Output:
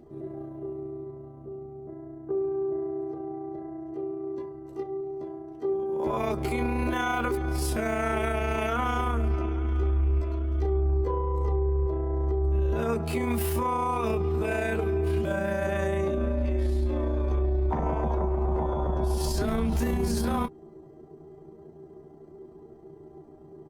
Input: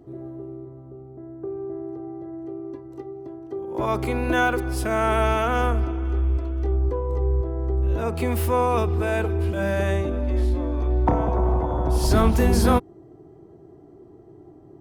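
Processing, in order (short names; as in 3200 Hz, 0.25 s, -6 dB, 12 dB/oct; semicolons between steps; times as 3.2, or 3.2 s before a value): comb 5 ms, depth 51%; limiter -18 dBFS, peak gain reduction 11.5 dB; granular stretch 1.6×, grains 69 ms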